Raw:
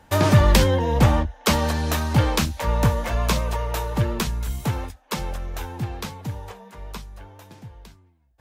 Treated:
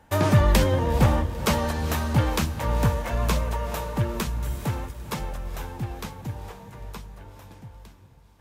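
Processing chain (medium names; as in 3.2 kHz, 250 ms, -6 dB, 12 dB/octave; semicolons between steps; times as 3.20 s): peaking EQ 4.5 kHz -3.5 dB 1.4 oct; on a send: echo that smears into a reverb 460 ms, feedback 46%, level -12 dB; on the sum: trim -3 dB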